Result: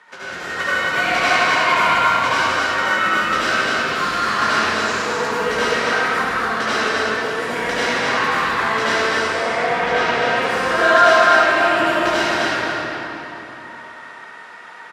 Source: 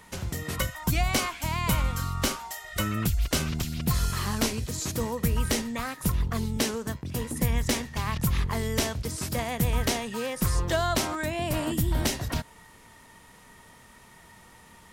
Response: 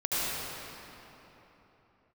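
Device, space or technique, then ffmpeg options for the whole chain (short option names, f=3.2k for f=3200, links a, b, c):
station announcement: -filter_complex "[0:a]asettb=1/sr,asplit=3[a][b][c];[a]atrim=end=9.194[d];[b]atrim=start=9.19:end=10.07,asetpts=PTS-STARTPTS,afade=t=in:d=0.004:c=qsin,afade=t=out:st=0.876:d=0.004:c=qsin,aemphasis=mode=reproduction:type=50fm[e];[c]atrim=start=10.066[f];[d][e]acrossfade=d=0.004:c1=hsin:c2=qsin[g];[g][f]acrossfade=d=0.004:c1=qsin:c2=hsin,highpass=440,lowpass=4.2k,equalizer=f=1.5k:t=o:w=0.55:g=11,aecho=1:1:154.5|256.6:0.355|0.562[h];[1:a]atrim=start_sample=2205[i];[h][i]afir=irnorm=-1:irlink=0,volume=1dB"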